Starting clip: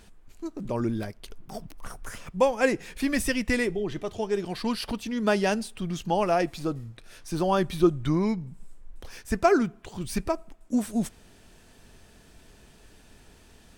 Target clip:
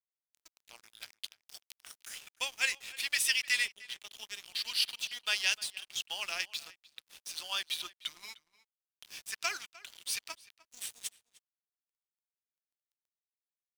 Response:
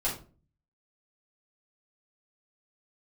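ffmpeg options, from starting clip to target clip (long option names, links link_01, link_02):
-filter_complex "[0:a]highpass=frequency=3000:width_type=q:width=1.9,aeval=exprs='sgn(val(0))*max(abs(val(0))-0.00422,0)':channel_layout=same,asplit=2[link_01][link_02];[link_02]adelay=303.2,volume=-19dB,highshelf=frequency=4000:gain=-6.82[link_03];[link_01][link_03]amix=inputs=2:normalize=0,volume=3dB"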